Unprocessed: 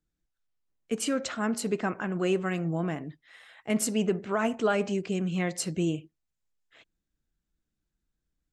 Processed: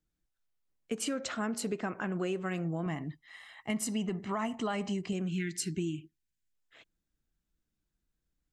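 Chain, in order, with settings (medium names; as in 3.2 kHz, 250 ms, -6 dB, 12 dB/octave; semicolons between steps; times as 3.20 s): 2.86–5.13 s: comb 1 ms, depth 59%; 5.30–6.53 s: spectral selection erased 430–1400 Hz; compression, threshold -29 dBFS, peak gain reduction 9 dB; trim -1 dB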